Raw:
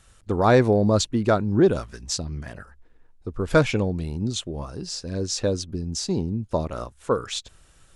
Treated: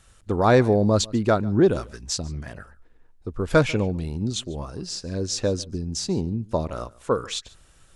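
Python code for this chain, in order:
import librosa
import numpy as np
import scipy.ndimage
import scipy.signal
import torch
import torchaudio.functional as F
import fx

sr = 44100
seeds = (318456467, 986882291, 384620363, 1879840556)

y = x + 10.0 ** (-23.0 / 20.0) * np.pad(x, (int(144 * sr / 1000.0), 0))[:len(x)]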